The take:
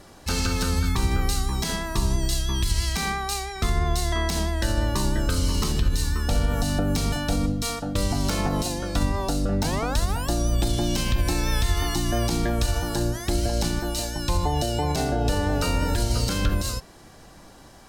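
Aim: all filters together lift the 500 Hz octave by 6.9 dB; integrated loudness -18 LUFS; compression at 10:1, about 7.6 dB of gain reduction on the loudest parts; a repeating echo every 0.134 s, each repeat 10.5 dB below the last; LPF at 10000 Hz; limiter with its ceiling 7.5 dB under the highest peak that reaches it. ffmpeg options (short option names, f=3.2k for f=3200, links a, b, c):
-af "lowpass=10k,equalizer=f=500:t=o:g=9,acompressor=threshold=-24dB:ratio=10,alimiter=limit=-21dB:level=0:latency=1,aecho=1:1:134|268|402:0.299|0.0896|0.0269,volume=12.5dB"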